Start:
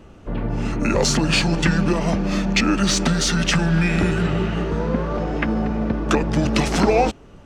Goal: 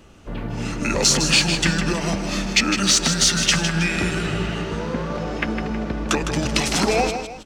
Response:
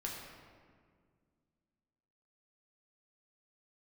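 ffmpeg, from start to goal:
-filter_complex "[0:a]highshelf=f=2.2k:g=11.5,asplit=2[a][b];[b]aecho=0:1:157|319:0.398|0.158[c];[a][c]amix=inputs=2:normalize=0,volume=-4.5dB"

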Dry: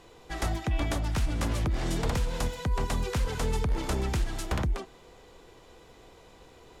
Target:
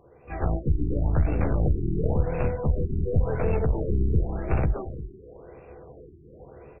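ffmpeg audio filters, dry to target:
-filter_complex "[0:a]dynaudnorm=f=230:g=3:m=8.5dB,asplit=2[a][b];[b]adelay=14,volume=-8dB[c];[a][c]amix=inputs=2:normalize=0,asplit=2[d][e];[e]asetrate=66075,aresample=44100,atempo=0.66742,volume=-10dB[f];[d][f]amix=inputs=2:normalize=0,highpass=f=110:p=1,aeval=exprs='clip(val(0),-1,0.0376)':c=same,equalizer=f=250:t=o:w=1:g=-8,equalizer=f=1k:t=o:w=1:g=-10,equalizer=f=2k:t=o:w=1:g=-11,asplit=2[g][h];[h]aecho=0:1:347:0.237[i];[g][i]amix=inputs=2:normalize=0,afftfilt=real='re*lt(b*sr/1024,400*pow(2800/400,0.5+0.5*sin(2*PI*0.93*pts/sr)))':imag='im*lt(b*sr/1024,400*pow(2800/400,0.5+0.5*sin(2*PI*0.93*pts/sr)))':win_size=1024:overlap=0.75,volume=4.5dB"

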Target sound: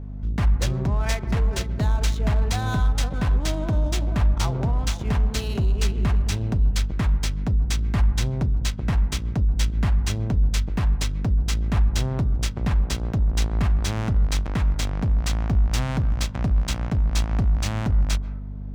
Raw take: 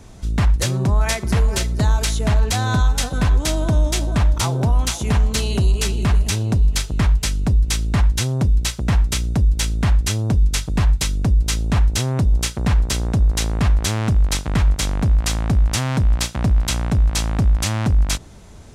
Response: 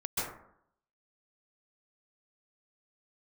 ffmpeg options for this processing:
-filter_complex "[0:a]adynamicsmooth=sensitivity=5:basefreq=1.2k,aeval=exprs='val(0)+0.0447*(sin(2*PI*50*n/s)+sin(2*PI*2*50*n/s)/2+sin(2*PI*3*50*n/s)/3+sin(2*PI*4*50*n/s)/4+sin(2*PI*5*50*n/s)/5)':c=same,asplit=2[a][b];[1:a]atrim=start_sample=2205,lowpass=2.1k[c];[b][c]afir=irnorm=-1:irlink=0,volume=-20dB[d];[a][d]amix=inputs=2:normalize=0,volume=-6dB"

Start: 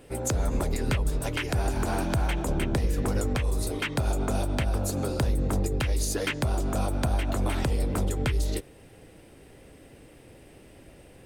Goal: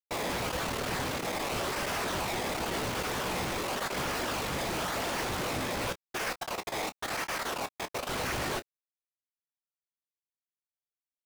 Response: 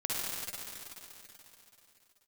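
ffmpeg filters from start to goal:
-filter_complex "[0:a]acrossover=split=5100[a][b];[b]acompressor=threshold=-51dB:ratio=4:attack=1:release=60[c];[a][c]amix=inputs=2:normalize=0,asplit=3[d][e][f];[d]afade=t=out:st=5.91:d=0.02[g];[e]highpass=f=900:p=1,afade=t=in:st=5.91:d=0.02,afade=t=out:st=8.08:d=0.02[h];[f]afade=t=in:st=8.08:d=0.02[i];[g][h][i]amix=inputs=3:normalize=0,acompressor=threshold=-33dB:ratio=4,acrusher=samples=21:mix=1:aa=0.000001:lfo=1:lforange=21:lforate=0.93,aeval=exprs='0.1*(cos(1*acos(clip(val(0)/0.1,-1,1)))-cos(1*PI/2))+0.001*(cos(3*acos(clip(val(0)/0.1,-1,1)))-cos(3*PI/2))+0.0112*(cos(5*acos(clip(val(0)/0.1,-1,1)))-cos(5*PI/2))+0.00501*(cos(7*acos(clip(val(0)/0.1,-1,1)))-cos(7*PI/2))+0.00708*(cos(8*acos(clip(val(0)/0.1,-1,1)))-cos(8*PI/2))':c=same,acrusher=bits=4:mix=0:aa=0.000001,afftfilt=real='hypot(re,im)*cos(2*PI*random(0))':imag='hypot(re,im)*sin(2*PI*random(1))':win_size=512:overlap=0.75,asplit=2[j][k];[k]highpass=f=720:p=1,volume=37dB,asoftclip=type=tanh:threshold=-27dB[l];[j][l]amix=inputs=2:normalize=0,lowpass=f=6.7k:p=1,volume=-6dB,aecho=1:1:16|28:0.266|0.211"

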